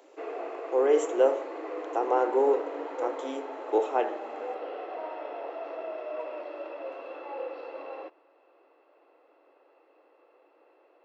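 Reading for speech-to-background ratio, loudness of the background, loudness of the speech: 10.0 dB, -37.5 LUFS, -27.5 LUFS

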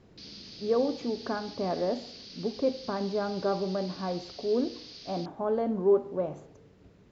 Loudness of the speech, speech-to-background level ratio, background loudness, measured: -31.0 LUFS, 14.0 dB, -45.0 LUFS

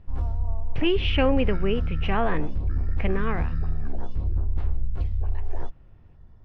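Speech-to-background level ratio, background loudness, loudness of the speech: 4.0 dB, -31.0 LUFS, -27.0 LUFS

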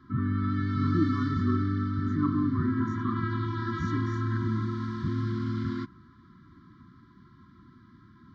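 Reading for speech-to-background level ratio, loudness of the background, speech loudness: -4.0 dB, -30.0 LUFS, -34.0 LUFS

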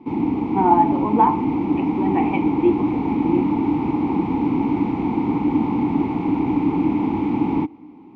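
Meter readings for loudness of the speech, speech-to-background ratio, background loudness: -22.0 LUFS, -1.0 dB, -21.0 LUFS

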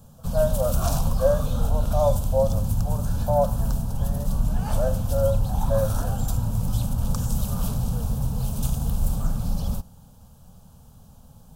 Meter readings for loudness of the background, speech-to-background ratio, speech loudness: -27.0 LUFS, 0.0 dB, -27.0 LUFS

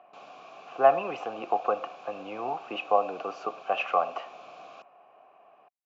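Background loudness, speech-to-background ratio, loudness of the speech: -48.0 LUFS, 19.0 dB, -29.0 LUFS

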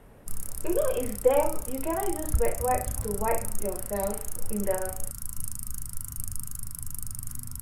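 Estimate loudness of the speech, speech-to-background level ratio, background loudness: -30.0 LUFS, 5.5 dB, -35.5 LUFS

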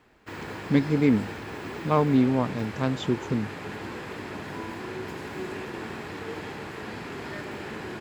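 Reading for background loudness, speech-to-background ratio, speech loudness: -36.5 LUFS, 11.5 dB, -25.0 LUFS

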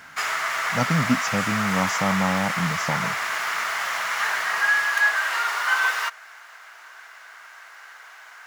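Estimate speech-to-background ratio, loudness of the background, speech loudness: -3.5 dB, -23.0 LUFS, -26.5 LUFS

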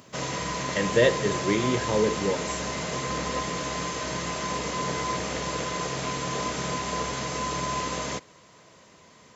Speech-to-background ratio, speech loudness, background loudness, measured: 4.0 dB, -26.0 LUFS, -30.0 LUFS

